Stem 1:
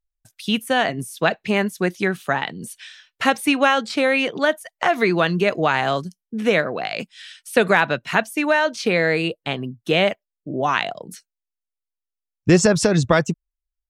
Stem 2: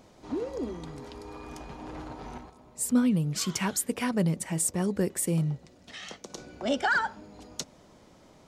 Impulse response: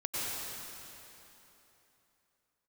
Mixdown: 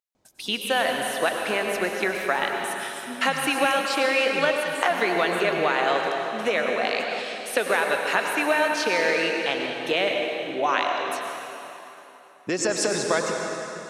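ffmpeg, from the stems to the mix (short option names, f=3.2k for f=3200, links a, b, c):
-filter_complex "[0:a]acompressor=threshold=-18dB:ratio=6,highpass=410,volume=-3.5dB,asplit=2[a][b];[b]volume=-3dB[c];[1:a]adelay=150,volume=-16dB,asplit=2[d][e];[e]volume=-18.5dB[f];[2:a]atrim=start_sample=2205[g];[c][f]amix=inputs=2:normalize=0[h];[h][g]afir=irnorm=-1:irlink=0[i];[a][d][i]amix=inputs=3:normalize=0"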